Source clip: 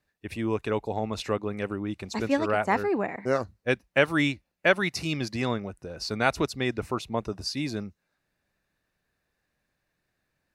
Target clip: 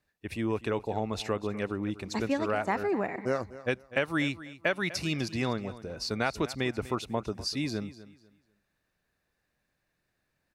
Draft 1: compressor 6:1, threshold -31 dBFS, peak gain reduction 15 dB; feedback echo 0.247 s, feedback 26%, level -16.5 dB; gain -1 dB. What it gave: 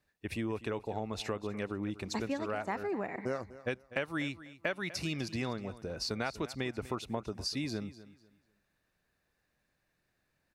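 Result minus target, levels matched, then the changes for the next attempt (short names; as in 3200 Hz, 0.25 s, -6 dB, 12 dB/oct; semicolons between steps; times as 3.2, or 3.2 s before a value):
compressor: peak gain reduction +6.5 dB
change: compressor 6:1, threshold -23 dBFS, peak gain reduction 8.5 dB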